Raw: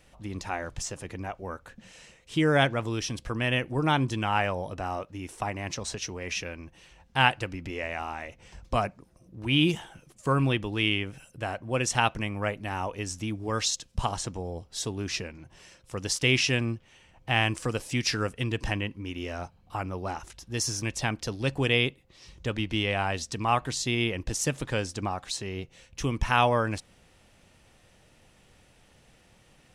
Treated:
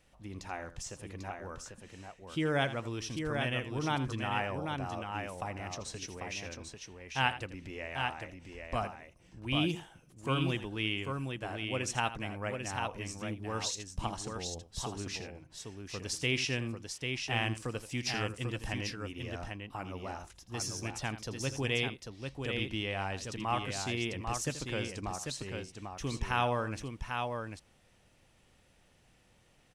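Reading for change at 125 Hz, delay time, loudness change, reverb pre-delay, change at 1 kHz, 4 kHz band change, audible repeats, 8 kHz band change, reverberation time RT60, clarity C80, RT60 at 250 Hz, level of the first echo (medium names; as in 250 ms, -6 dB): -6.5 dB, 82 ms, -7.0 dB, no reverb, -6.5 dB, -6.5 dB, 2, -6.5 dB, no reverb, no reverb, no reverb, -13.5 dB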